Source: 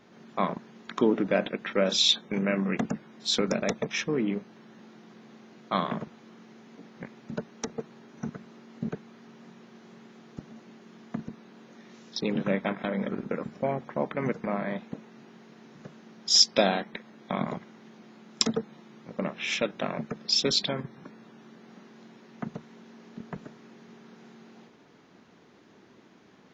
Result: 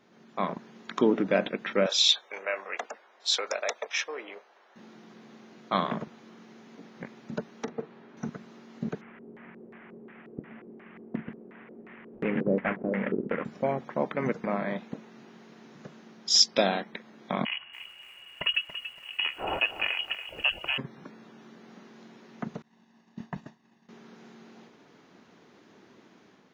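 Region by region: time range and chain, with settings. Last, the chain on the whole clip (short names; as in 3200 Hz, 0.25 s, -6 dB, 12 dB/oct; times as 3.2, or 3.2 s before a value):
1.86–4.76 HPF 560 Hz 24 dB/oct + mismatched tape noise reduction decoder only
7.63–8.17 BPF 120–2900 Hz + doubler 42 ms -14 dB
9.01–13.45 CVSD 16 kbps + LFO low-pass square 2.8 Hz 430–2000 Hz
17.45–20.78 inverted band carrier 3100 Hz + lo-fi delay 0.283 s, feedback 35%, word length 9-bit, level -11 dB
22.62–23.89 expander -42 dBFS + comb 1.1 ms, depth 61%
whole clip: low shelf 100 Hz -7.5 dB; AGC gain up to 5.5 dB; gain -4.5 dB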